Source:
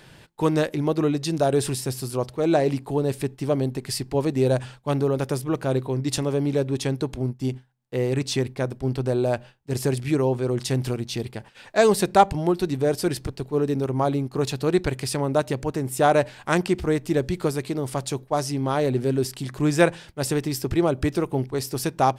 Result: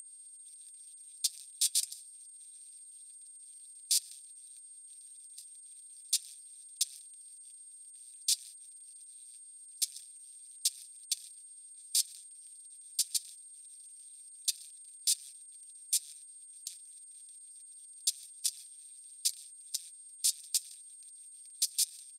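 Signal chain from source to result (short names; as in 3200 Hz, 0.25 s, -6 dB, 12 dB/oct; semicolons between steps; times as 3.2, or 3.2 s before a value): per-bin compression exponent 0.2; inverse Chebyshev high-pass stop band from 1100 Hz, stop band 60 dB; bell 8800 Hz +5.5 dB 0.21 oct; on a send: feedback echo 0.268 s, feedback 53%, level -17 dB; on the sum: level quantiser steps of 22 dB; comb 6.6 ms, depth 37%; gate -40 dBFS, range -27 dB; whine 8600 Hz -28 dBFS; harmonic-percussive split harmonic -17 dB; flange 0.27 Hz, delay 2.2 ms, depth 3.2 ms, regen +70%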